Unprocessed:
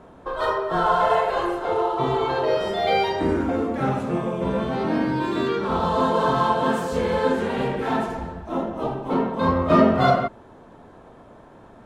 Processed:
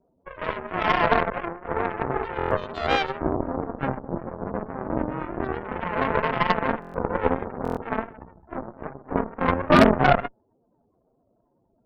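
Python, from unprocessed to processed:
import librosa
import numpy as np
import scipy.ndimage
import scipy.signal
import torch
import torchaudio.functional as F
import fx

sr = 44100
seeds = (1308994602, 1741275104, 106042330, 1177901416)

y = scipy.signal.sosfilt(scipy.signal.butter(2, 4200.0, 'lowpass', fs=sr, output='sos'), x)
y = fx.spec_topn(y, sr, count=16)
y = fx.vibrato(y, sr, rate_hz=4.5, depth_cents=49.0)
y = fx.cheby_harmonics(y, sr, harmonics=(2, 4, 6, 7), levels_db=(-20, -8, -25, -18), full_scale_db=-6.5)
y = fx.buffer_glitch(y, sr, at_s=(2.37, 6.8, 7.63), block=1024, repeats=5)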